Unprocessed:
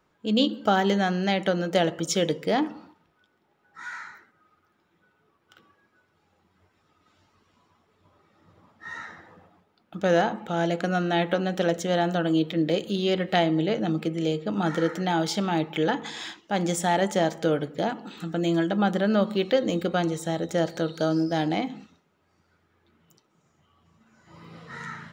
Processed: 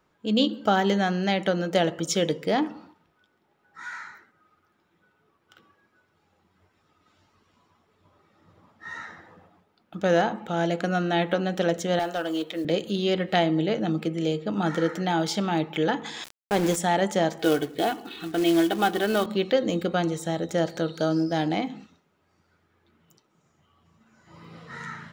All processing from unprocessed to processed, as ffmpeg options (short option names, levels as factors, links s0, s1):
-filter_complex "[0:a]asettb=1/sr,asplit=3[s0][s1][s2];[s0]atrim=end=11.994[s3];[s1]atrim=start=11.99:end=12.65,asetpts=PTS-STARTPTS,afade=t=in:d=0.004:c=qsin,afade=t=out:st=0.656:d=0.004:c=qsin,highpass=410,asoftclip=type=hard:threshold=0.0841,acrusher=bits=7:mode=log:mix=0:aa=0.000001[s4];[s2]atrim=start=12.646[s5];[s3][s4]acrossfade=d=0.004:c1=hsin:c2=qsin[s6];[s6][s5]acrossfade=d=0.004:c1=qsin:c2=hsin,asettb=1/sr,asplit=3[s7][s8][s9];[s7]atrim=end=16.244[s10];[s8]atrim=start=16.24:end=16.76,asetpts=PTS-STARTPTS,afade=t=in:d=0.004:c=qsin,afade=t=out:st=0.516:d=0.004:c=qsin,equalizer=f=420:w=2.8:g=10.5,aeval=exprs='val(0)*gte(abs(val(0)),0.0398)':c=same[s11];[s9]atrim=start=16.756[s12];[s10][s11]acrossfade=d=0.004:c1=hsin:c2=qsin[s13];[s13][s12]acrossfade=d=0.004:c1=qsin:c2=hsin,asettb=1/sr,asplit=3[s14][s15][s16];[s14]atrim=end=17.394[s17];[s15]atrim=start=17.39:end=19.26,asetpts=PTS-STARTPTS,afade=t=in:d=0.004:c=qsin,afade=t=out:st=1.866:d=0.004:c=qsin,lowpass=f=3700:t=q:w=1.6,aecho=1:1:2.7:0.67,atrim=end_sample=82467,acrusher=bits=4:mode=log:mix=0:aa=0.000001[s18];[s16]atrim=start=19.256[s19];[s17][s18]acrossfade=d=0.004:c1=hsin:c2=qsin[s20];[s20][s19]acrossfade=d=0.004:c1=qsin:c2=hsin"